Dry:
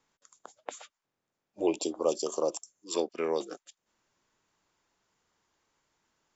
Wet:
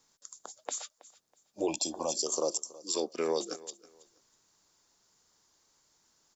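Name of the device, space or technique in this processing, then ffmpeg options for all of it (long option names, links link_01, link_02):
over-bright horn tweeter: -filter_complex "[0:a]highshelf=frequency=3600:width_type=q:width=1.5:gain=8.5,alimiter=limit=-21.5dB:level=0:latency=1:release=83,asettb=1/sr,asplit=3[link_01][link_02][link_03];[link_01]atrim=end=1.684[link_04];[link_02]atrim=start=1.68:end=2.16,asetpts=PTS-STARTPTS,afade=type=in:duration=0.004:curve=qsin,afade=type=out:start_time=0.476:duration=0.004:curve=qsin,aecho=1:1:1.2:0.8,atrim=end_sample=21168[link_05];[link_03]atrim=start=2.156[link_06];[link_04][link_05]acrossfade=duration=0.004:curve1=hsin:curve2=qsin[link_07];[link_07][link_06]acrossfade=duration=0.004:curve1=qsin:curve2=hsin,aecho=1:1:324|648:0.1|0.026,volume=1.5dB"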